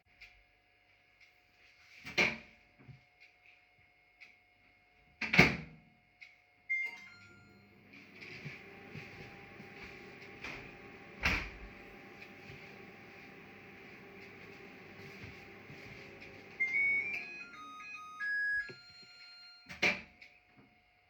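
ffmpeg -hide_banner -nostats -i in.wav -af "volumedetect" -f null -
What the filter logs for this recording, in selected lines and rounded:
mean_volume: -41.1 dB
max_volume: -8.5 dB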